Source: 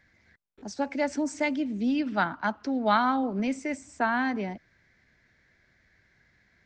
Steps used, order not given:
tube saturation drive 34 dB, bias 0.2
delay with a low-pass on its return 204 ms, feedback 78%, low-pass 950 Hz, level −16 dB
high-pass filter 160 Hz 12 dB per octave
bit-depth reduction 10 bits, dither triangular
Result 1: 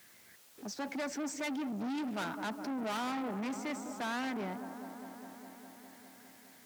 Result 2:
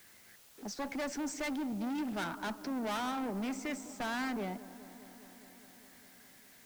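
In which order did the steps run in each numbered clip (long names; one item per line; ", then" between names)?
bit-depth reduction, then delay with a low-pass on its return, then tube saturation, then high-pass filter
high-pass filter, then tube saturation, then bit-depth reduction, then delay with a low-pass on its return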